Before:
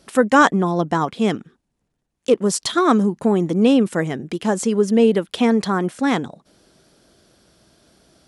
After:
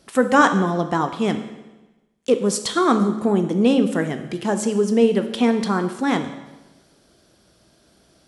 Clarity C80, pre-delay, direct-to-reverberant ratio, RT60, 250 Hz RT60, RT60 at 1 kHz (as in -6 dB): 12.0 dB, 14 ms, 7.5 dB, 1.1 s, 1.2 s, 1.1 s